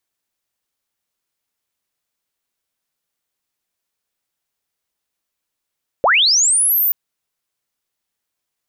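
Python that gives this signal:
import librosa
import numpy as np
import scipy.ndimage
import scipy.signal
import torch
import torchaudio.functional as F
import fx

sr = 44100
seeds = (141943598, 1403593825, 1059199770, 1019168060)

y = fx.chirp(sr, length_s=0.88, from_hz=450.0, to_hz=15000.0, law='linear', from_db=-9.5, to_db=-13.0)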